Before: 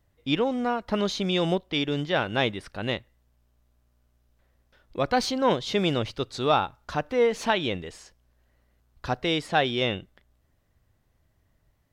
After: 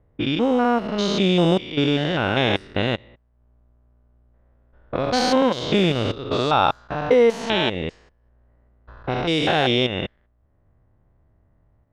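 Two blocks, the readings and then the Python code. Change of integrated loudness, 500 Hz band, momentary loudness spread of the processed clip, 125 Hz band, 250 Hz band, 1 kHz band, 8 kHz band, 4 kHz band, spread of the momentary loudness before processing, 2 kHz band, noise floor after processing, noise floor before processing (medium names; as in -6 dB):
+5.5 dB, +5.5 dB, 10 LU, +7.0 dB, +7.0 dB, +4.5 dB, +3.0 dB, +5.5 dB, 9 LU, +4.5 dB, -62 dBFS, -68 dBFS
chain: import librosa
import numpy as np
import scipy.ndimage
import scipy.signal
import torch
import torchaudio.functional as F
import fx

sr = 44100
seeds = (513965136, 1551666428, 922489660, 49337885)

y = fx.spec_steps(x, sr, hold_ms=200)
y = fx.env_lowpass(y, sr, base_hz=1100.0, full_db=-24.0)
y = fx.transient(y, sr, attack_db=2, sustain_db=-6)
y = F.gain(torch.from_numpy(y), 9.0).numpy()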